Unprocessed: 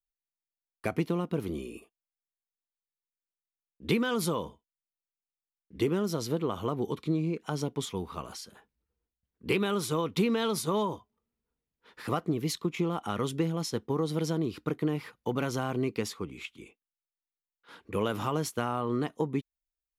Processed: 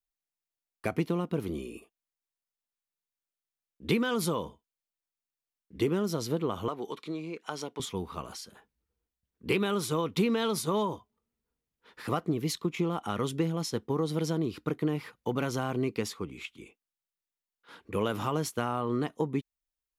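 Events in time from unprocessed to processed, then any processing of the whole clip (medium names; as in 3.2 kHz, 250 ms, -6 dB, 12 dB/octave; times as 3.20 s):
6.68–7.80 s: frequency weighting A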